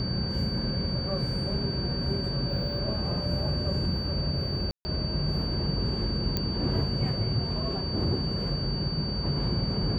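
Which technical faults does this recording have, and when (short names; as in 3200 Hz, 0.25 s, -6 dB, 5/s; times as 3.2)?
tone 4600 Hz -34 dBFS
4.71–4.85 gap 0.14 s
6.37 pop -13 dBFS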